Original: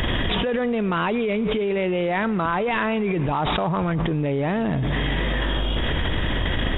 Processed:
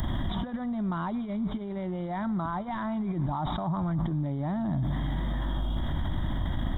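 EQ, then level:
low-shelf EQ 140 Hz −5.5 dB
parametric band 1,600 Hz −13 dB 1.8 octaves
phaser with its sweep stopped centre 1,100 Hz, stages 4
0.0 dB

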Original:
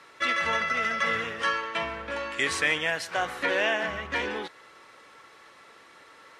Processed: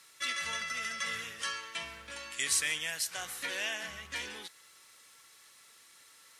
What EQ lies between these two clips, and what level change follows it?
bass and treble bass +9 dB, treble −1 dB
first-order pre-emphasis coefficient 0.9
high-shelf EQ 4,800 Hz +11.5 dB
0.0 dB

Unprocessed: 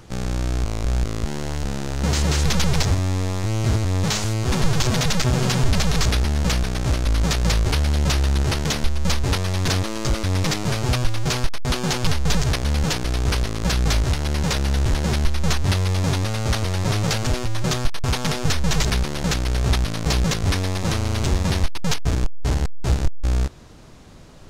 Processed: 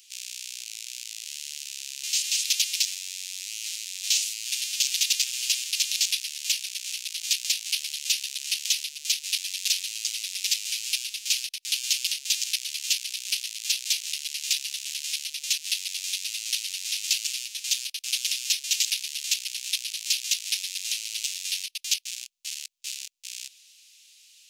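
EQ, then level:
elliptic high-pass filter 2,600 Hz, stop band 80 dB
high-shelf EQ 9,500 Hz +7.5 dB
+1.5 dB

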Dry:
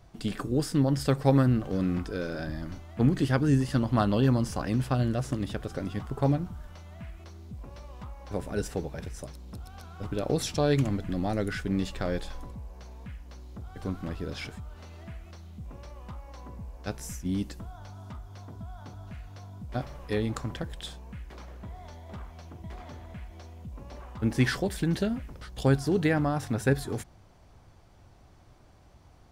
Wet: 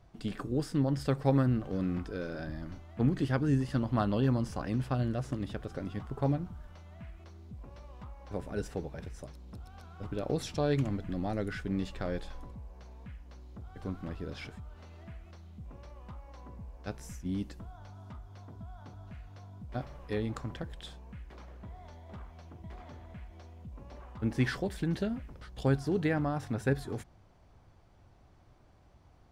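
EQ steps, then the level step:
high-shelf EQ 5,200 Hz −8 dB
−4.5 dB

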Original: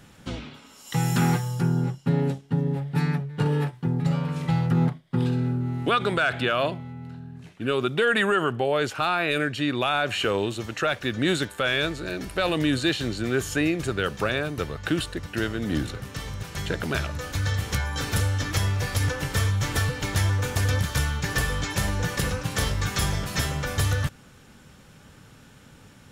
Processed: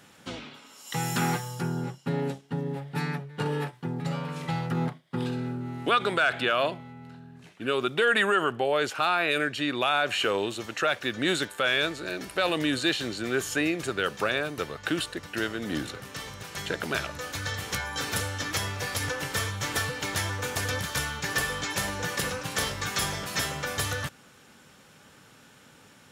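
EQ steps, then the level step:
high-pass filter 360 Hz 6 dB per octave
0.0 dB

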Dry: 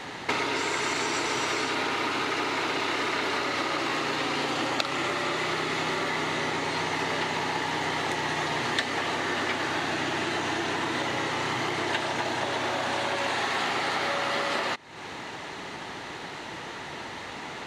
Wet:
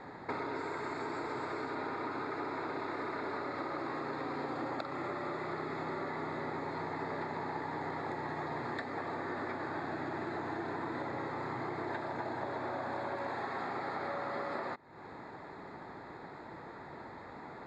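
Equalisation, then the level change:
moving average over 15 samples
−7.0 dB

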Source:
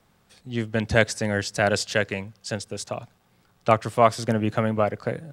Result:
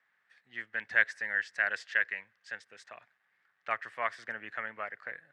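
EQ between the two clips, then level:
resonant band-pass 1,800 Hz, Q 6.3
+3.5 dB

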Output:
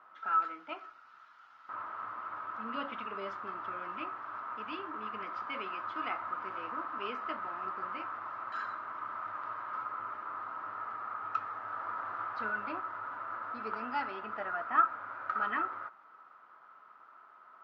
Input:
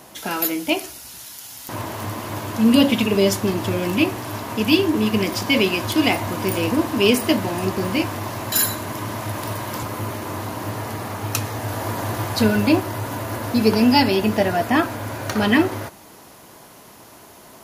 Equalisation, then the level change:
resonant band-pass 1,300 Hz, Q 15
high-frequency loss of the air 220 metres
+7.0 dB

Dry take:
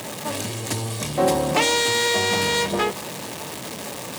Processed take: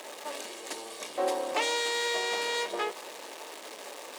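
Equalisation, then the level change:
high-pass filter 360 Hz 24 dB per octave
high-shelf EQ 9,800 Hz −9.5 dB
−8.5 dB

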